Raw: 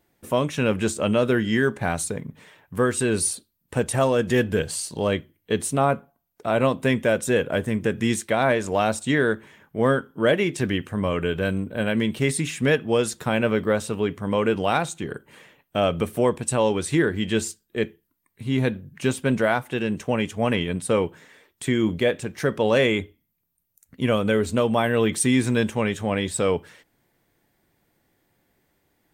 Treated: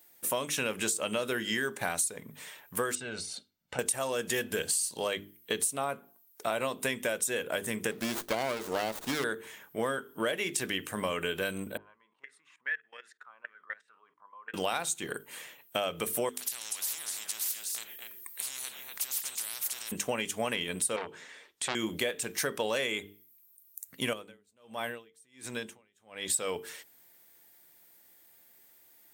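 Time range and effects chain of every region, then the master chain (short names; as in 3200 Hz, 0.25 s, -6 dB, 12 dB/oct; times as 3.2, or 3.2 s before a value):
2.95–3.79 comb 1.4 ms, depth 50% + compressor 12:1, threshold -28 dBFS + air absorption 170 m
7.91–9.24 HPF 150 Hz + running maximum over 17 samples
11.77–14.54 high shelf 5600 Hz -10 dB + level quantiser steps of 19 dB + auto-wah 790–1800 Hz, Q 9.6, up, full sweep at -25 dBFS
16.29–19.92 compressor 3:1, threshold -33 dBFS + echo 0.242 s -16 dB + spectral compressor 10:1
20.96–21.75 air absorption 84 m + core saturation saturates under 1700 Hz
24.13–26.3 high shelf 6300 Hz -7 dB + compressor 4:1, threshold -29 dBFS + dB-linear tremolo 1.4 Hz, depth 38 dB
whole clip: RIAA curve recording; notches 50/100/150/200/250/300/350/400/450 Hz; compressor 6:1, threshold -28 dBFS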